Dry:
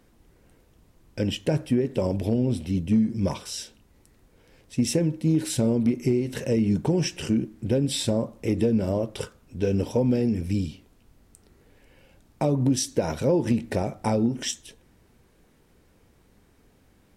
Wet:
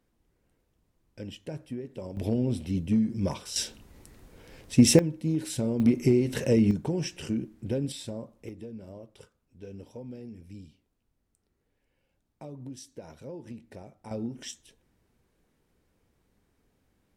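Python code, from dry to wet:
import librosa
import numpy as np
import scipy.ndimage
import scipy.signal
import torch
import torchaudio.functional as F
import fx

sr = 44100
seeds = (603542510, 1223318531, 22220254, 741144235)

y = fx.gain(x, sr, db=fx.steps((0.0, -14.0), (2.17, -3.5), (3.56, 6.0), (4.99, -6.0), (5.8, 1.0), (6.71, -6.5), (7.92, -13.0), (8.49, -19.5), (14.11, -11.0)))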